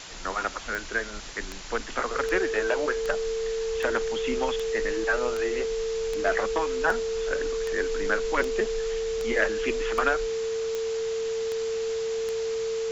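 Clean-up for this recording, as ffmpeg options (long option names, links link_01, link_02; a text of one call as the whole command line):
ffmpeg -i in.wav -af "adeclick=threshold=4,bandreject=frequency=450:width=30,afwtdn=0.013" out.wav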